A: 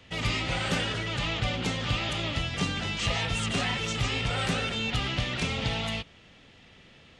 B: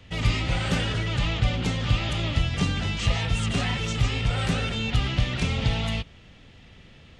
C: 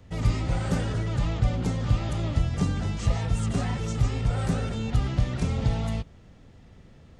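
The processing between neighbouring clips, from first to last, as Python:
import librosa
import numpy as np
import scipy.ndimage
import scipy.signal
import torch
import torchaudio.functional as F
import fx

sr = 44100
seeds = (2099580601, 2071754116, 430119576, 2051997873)

y1 = fx.low_shelf(x, sr, hz=140.0, db=12.0)
y1 = fx.rider(y1, sr, range_db=10, speed_s=0.5)
y2 = fx.peak_eq(y1, sr, hz=2900.0, db=-14.0, octaves=1.5)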